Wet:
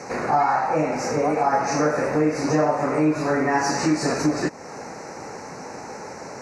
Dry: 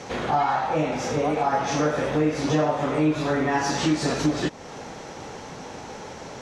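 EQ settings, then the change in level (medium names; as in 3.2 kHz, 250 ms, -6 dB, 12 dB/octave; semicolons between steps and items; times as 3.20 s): high-pass 180 Hz 6 dB/octave; Butterworth band-stop 3.3 kHz, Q 1.6; +3.0 dB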